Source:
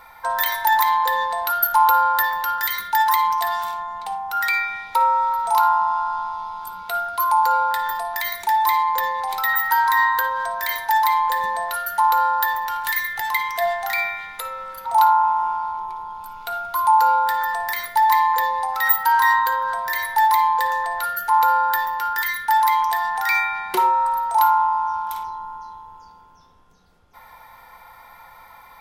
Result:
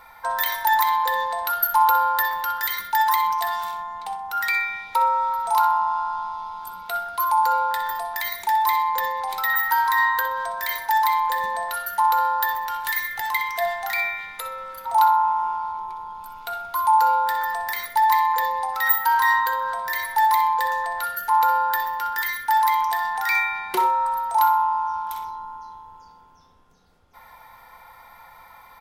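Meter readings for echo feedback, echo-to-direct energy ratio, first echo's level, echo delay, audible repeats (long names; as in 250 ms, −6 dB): 25%, −12.0 dB, −12.5 dB, 63 ms, 2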